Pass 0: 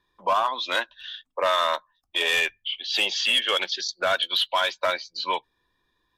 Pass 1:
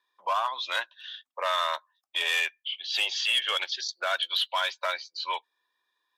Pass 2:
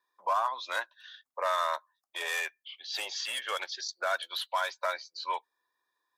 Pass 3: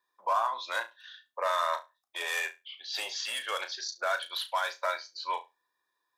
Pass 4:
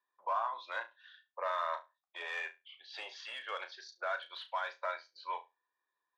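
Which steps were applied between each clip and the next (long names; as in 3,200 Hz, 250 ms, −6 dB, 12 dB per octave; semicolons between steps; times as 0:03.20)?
high-pass filter 720 Hz 12 dB per octave; level −3.5 dB
parametric band 3,000 Hz −13 dB 0.84 octaves
flutter between parallel walls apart 6 metres, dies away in 0.22 s
band-pass filter 320–2,900 Hz; level −6 dB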